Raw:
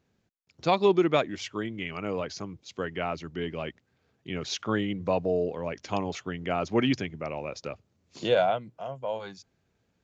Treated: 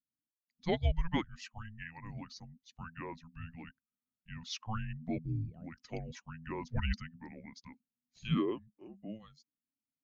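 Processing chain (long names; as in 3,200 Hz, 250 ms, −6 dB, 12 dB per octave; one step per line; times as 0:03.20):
spectral dynamics exaggerated over time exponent 1.5
frequency shifter −330 Hz
level −6.5 dB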